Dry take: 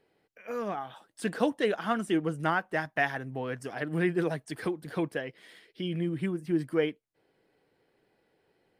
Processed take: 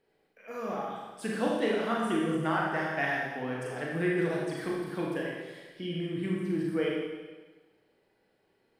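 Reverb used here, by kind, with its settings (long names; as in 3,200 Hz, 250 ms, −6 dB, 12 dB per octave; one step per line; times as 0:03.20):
four-comb reverb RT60 1.3 s, combs from 28 ms, DRR −3.5 dB
level −5 dB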